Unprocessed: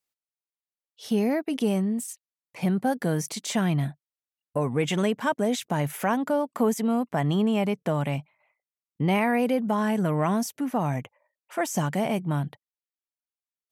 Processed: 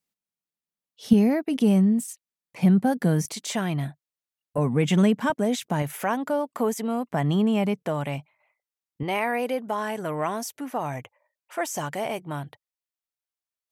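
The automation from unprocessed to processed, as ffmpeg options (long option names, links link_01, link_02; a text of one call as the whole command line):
ffmpeg -i in.wav -af "asetnsamples=nb_out_samples=441:pad=0,asendcmd='1.13 equalizer g 7;3.25 equalizer g -4;4.58 equalizer g 8;5.3 equalizer g 2;5.82 equalizer g -5;7.11 equalizer g 2;7.83 equalizer g -5.5;9.03 equalizer g -13',equalizer=frequency=190:width_type=o:width=0.95:gain=14.5" out.wav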